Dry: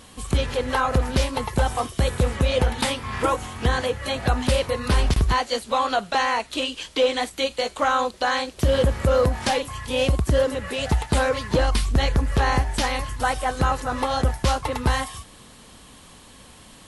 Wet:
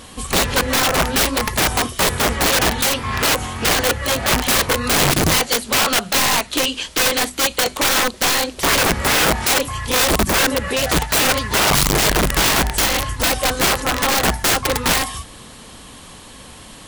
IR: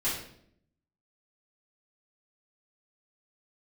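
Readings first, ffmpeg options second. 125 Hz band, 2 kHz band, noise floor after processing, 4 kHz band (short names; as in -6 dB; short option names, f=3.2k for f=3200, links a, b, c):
-1.0 dB, +9.5 dB, -40 dBFS, +11.0 dB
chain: -af "aeval=exprs='(mod(8.41*val(0)+1,2)-1)/8.41':c=same,bandreject=f=50:t=h:w=6,bandreject=f=100:t=h:w=6,bandreject=f=150:t=h:w=6,bandreject=f=200:t=h:w=6,bandreject=f=250:t=h:w=6,volume=8dB"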